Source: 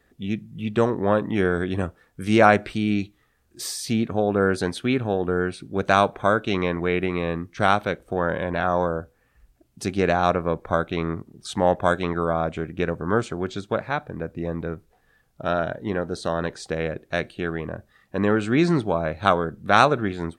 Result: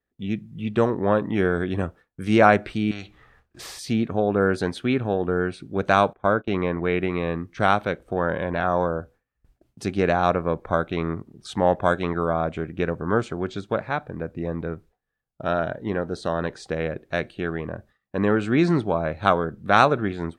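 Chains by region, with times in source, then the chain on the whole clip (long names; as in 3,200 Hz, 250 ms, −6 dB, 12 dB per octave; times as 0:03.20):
0:02.91–0:03.79: low-pass filter 1,700 Hz 6 dB per octave + parametric band 270 Hz −9.5 dB 1.7 octaves + every bin compressed towards the loudest bin 2 to 1
0:06.13–0:06.85: noise gate −31 dBFS, range −19 dB + low-pass filter 2,100 Hz 6 dB per octave
whole clip: noise gate with hold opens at −45 dBFS; high-shelf EQ 5,300 Hz −8 dB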